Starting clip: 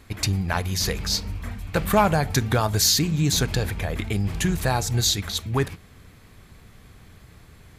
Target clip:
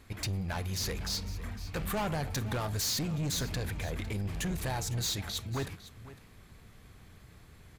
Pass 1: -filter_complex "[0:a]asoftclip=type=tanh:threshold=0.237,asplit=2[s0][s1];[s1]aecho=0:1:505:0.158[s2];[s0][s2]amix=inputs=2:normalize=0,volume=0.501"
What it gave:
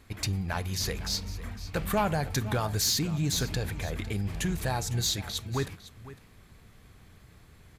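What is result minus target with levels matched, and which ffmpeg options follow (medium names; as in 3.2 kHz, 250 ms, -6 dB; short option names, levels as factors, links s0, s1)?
saturation: distortion -10 dB
-filter_complex "[0:a]asoftclip=type=tanh:threshold=0.0708,asplit=2[s0][s1];[s1]aecho=0:1:505:0.158[s2];[s0][s2]amix=inputs=2:normalize=0,volume=0.501"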